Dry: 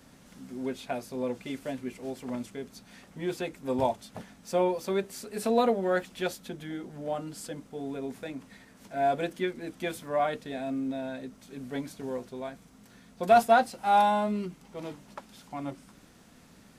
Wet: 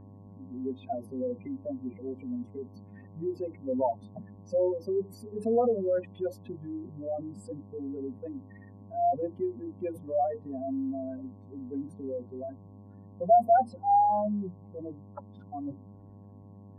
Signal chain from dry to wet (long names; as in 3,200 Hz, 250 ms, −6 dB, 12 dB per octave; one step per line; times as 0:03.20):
expanding power law on the bin magnitudes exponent 3.4
hum with harmonics 100 Hz, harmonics 11, −51 dBFS −7 dB per octave
flat-topped bell 5,300 Hz −13.5 dB